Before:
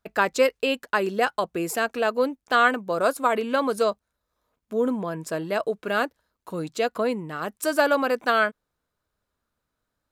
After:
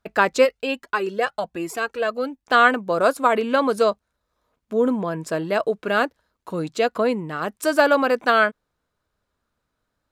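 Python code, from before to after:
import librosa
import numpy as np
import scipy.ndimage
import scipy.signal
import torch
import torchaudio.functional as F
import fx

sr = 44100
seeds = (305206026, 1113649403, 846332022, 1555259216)

y = fx.high_shelf(x, sr, hz=9500.0, db=-9.5)
y = fx.comb_cascade(y, sr, direction='rising', hz=1.2, at=(0.44, 2.46), fade=0.02)
y = y * librosa.db_to_amplitude(4.0)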